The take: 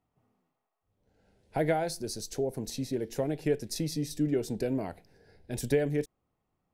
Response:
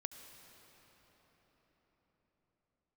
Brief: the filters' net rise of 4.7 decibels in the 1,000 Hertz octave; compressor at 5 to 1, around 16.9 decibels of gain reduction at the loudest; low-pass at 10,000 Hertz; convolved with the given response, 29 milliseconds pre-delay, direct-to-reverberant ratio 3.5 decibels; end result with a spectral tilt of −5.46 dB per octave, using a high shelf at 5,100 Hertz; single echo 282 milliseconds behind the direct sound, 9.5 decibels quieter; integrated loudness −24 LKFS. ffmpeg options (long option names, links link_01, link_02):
-filter_complex "[0:a]lowpass=10000,equalizer=frequency=1000:width_type=o:gain=7.5,highshelf=frequency=5100:gain=-7.5,acompressor=threshold=-41dB:ratio=5,aecho=1:1:282:0.335,asplit=2[link_01][link_02];[1:a]atrim=start_sample=2205,adelay=29[link_03];[link_02][link_03]afir=irnorm=-1:irlink=0,volume=-0.5dB[link_04];[link_01][link_04]amix=inputs=2:normalize=0,volume=19dB"